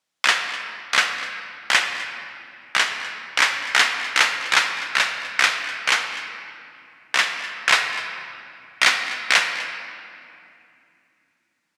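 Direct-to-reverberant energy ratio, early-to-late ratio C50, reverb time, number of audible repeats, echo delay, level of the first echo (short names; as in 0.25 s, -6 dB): 4.5 dB, 5.5 dB, 2.7 s, 1, 0.25 s, -17.0 dB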